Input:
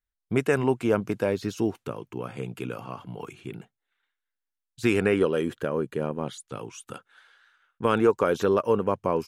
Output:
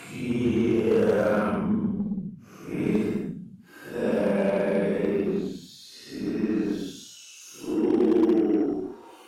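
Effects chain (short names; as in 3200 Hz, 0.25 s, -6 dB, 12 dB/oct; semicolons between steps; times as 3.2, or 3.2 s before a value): high-pass sweep 75 Hz -> 680 Hz, 0.08–2.69; Paulstretch 9.8×, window 0.05 s, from 0.81; added harmonics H 8 -30 dB, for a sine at -11.5 dBFS; gain -3 dB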